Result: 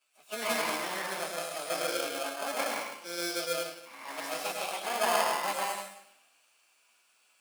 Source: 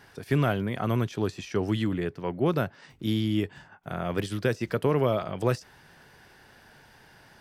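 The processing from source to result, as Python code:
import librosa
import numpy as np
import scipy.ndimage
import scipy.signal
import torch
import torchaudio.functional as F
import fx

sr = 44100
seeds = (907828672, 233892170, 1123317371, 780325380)

p1 = fx.pitch_bins(x, sr, semitones=8.0)
p2 = fx.peak_eq(p1, sr, hz=2000.0, db=-4.0, octaves=2.8)
p3 = p2 + fx.echo_single(p2, sr, ms=107, db=-6.0, dry=0)
p4 = fx.rev_plate(p3, sr, seeds[0], rt60_s=0.86, hf_ratio=0.95, predelay_ms=115, drr_db=-3.0)
p5 = fx.sample_hold(p4, sr, seeds[1], rate_hz=1900.0, jitter_pct=0)
p6 = p4 + F.gain(torch.from_numpy(p5), -5.5).numpy()
p7 = scipy.signal.sosfilt(scipy.signal.butter(2, 1000.0, 'highpass', fs=sr, output='sos'), p6)
p8 = fx.peak_eq(p7, sr, hz=10000.0, db=6.0, octaves=0.46)
y = fx.band_widen(p8, sr, depth_pct=40)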